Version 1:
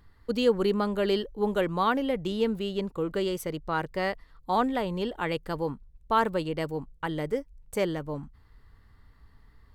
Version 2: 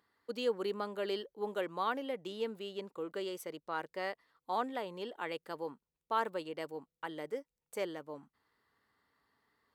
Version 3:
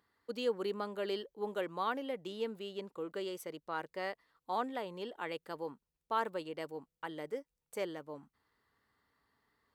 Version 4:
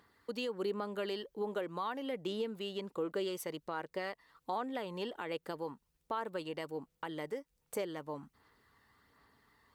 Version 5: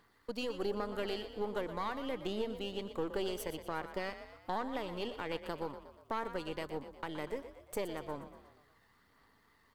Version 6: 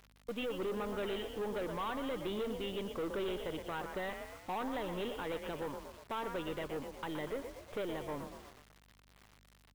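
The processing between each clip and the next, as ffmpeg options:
-af "highpass=330,volume=0.376"
-af "lowshelf=f=98:g=8,volume=0.891"
-af "alimiter=level_in=2.37:limit=0.0631:level=0:latency=1:release=247,volume=0.422,aphaser=in_gain=1:out_gain=1:delay=1.1:decay=0.28:speed=1.3:type=sinusoidal,acompressor=threshold=0.00316:ratio=1.5,volume=2.51"
-filter_complex "[0:a]aeval=exprs='if(lt(val(0),0),0.447*val(0),val(0))':c=same,asplit=2[s0][s1];[s1]asplit=6[s2][s3][s4][s5][s6][s7];[s2]adelay=120,afreqshift=36,volume=0.266[s8];[s3]adelay=240,afreqshift=72,volume=0.138[s9];[s4]adelay=360,afreqshift=108,volume=0.0716[s10];[s5]adelay=480,afreqshift=144,volume=0.0376[s11];[s6]adelay=600,afreqshift=180,volume=0.0195[s12];[s7]adelay=720,afreqshift=216,volume=0.0101[s13];[s8][s9][s10][s11][s12][s13]amix=inputs=6:normalize=0[s14];[s0][s14]amix=inputs=2:normalize=0,volume=1.26"
-af "aresample=8000,asoftclip=type=tanh:threshold=0.0141,aresample=44100,acrusher=bits=9:mix=0:aa=0.000001,aeval=exprs='val(0)+0.000316*(sin(2*PI*50*n/s)+sin(2*PI*2*50*n/s)/2+sin(2*PI*3*50*n/s)/3+sin(2*PI*4*50*n/s)/4+sin(2*PI*5*50*n/s)/5)':c=same,volume=1.68"

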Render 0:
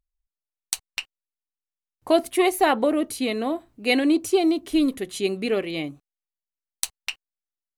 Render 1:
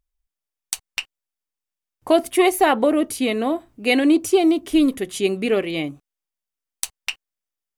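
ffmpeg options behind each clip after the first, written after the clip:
-filter_complex "[0:a]bandreject=f=4100:w=14,asplit=2[s0][s1];[s1]alimiter=limit=0.282:level=0:latency=1:release=163,volume=1.12[s2];[s0][s2]amix=inputs=2:normalize=0,volume=0.75"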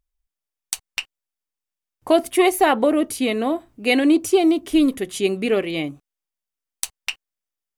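-af anull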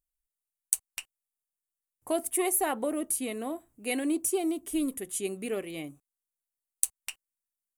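-af "highshelf=f=6400:t=q:w=1.5:g=12.5,volume=0.224"

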